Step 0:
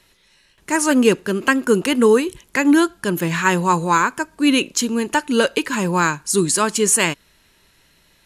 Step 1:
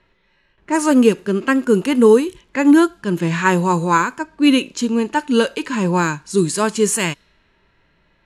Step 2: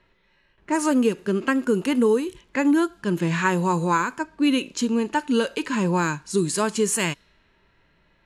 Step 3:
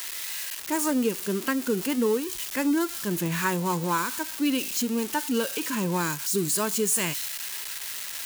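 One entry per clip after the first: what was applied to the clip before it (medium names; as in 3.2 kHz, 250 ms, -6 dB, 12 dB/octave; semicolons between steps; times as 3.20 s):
level-controlled noise filter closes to 2 kHz, open at -13 dBFS; harmonic-percussive split harmonic +9 dB; trim -6 dB
compression 2.5:1, threshold -16 dBFS, peak gain reduction 7 dB; trim -2.5 dB
zero-crossing glitches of -17 dBFS; trim -5 dB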